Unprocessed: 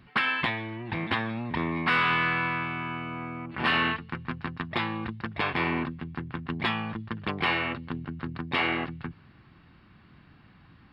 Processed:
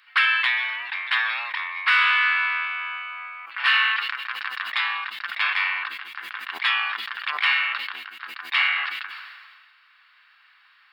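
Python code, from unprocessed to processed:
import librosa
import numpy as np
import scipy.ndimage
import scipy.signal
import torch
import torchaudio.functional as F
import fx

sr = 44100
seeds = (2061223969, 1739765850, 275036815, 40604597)

y = scipy.signal.sosfilt(scipy.signal.butter(4, 1300.0, 'highpass', fs=sr, output='sos'), x)
y = fx.sustainer(y, sr, db_per_s=34.0)
y = y * librosa.db_to_amplitude(7.5)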